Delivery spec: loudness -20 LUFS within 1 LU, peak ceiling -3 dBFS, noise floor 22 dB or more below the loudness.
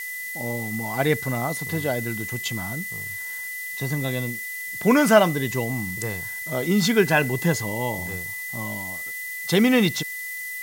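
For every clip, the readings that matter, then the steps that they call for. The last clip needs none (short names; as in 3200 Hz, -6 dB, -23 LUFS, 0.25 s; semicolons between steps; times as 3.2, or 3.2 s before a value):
steady tone 2000 Hz; tone level -31 dBFS; noise floor -33 dBFS; noise floor target -46 dBFS; loudness -24.0 LUFS; peak -3.0 dBFS; loudness target -20.0 LUFS
-> notch 2000 Hz, Q 30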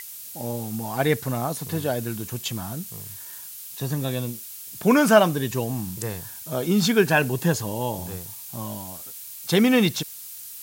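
steady tone none; noise floor -39 dBFS; noise floor target -46 dBFS
-> denoiser 7 dB, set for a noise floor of -39 dBFS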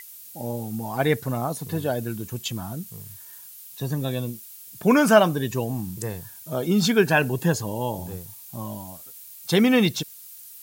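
noise floor -44 dBFS; noise floor target -46 dBFS
-> denoiser 6 dB, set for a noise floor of -44 dBFS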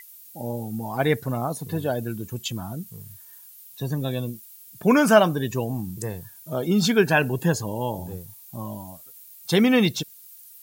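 noise floor -47 dBFS; loudness -24.0 LUFS; peak -3.0 dBFS; loudness target -20.0 LUFS
-> gain +4 dB; limiter -3 dBFS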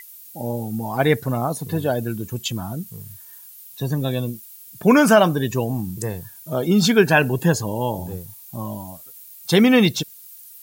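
loudness -20.0 LUFS; peak -3.0 dBFS; noise floor -43 dBFS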